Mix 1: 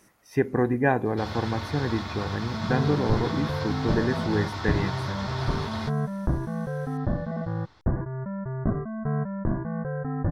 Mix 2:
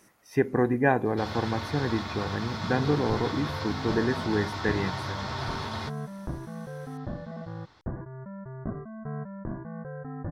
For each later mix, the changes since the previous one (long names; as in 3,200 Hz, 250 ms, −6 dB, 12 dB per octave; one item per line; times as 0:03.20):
second sound −7.0 dB
master: add low-shelf EQ 91 Hz −6 dB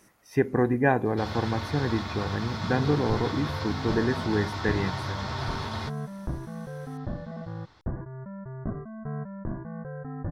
master: add low-shelf EQ 91 Hz +6 dB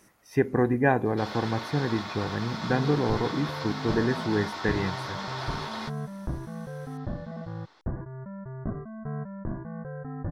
first sound: add high-pass filter 320 Hz 12 dB per octave